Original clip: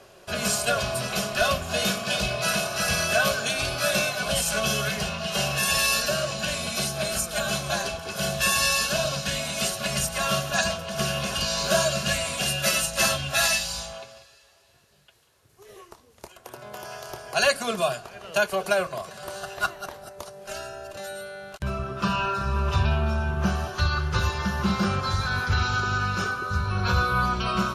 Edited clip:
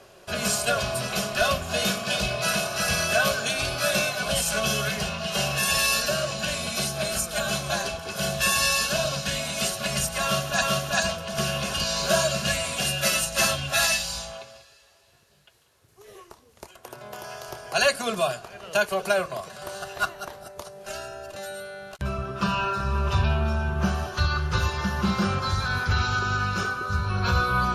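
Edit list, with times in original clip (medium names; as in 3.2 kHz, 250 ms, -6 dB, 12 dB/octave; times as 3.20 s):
10.23–10.62 s: loop, 2 plays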